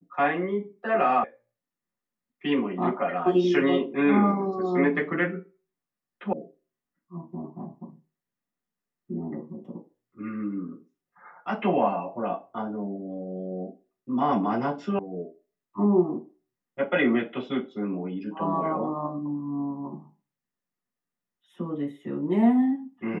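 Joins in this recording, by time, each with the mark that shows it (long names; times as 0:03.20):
0:01.24: cut off before it has died away
0:06.33: cut off before it has died away
0:14.99: cut off before it has died away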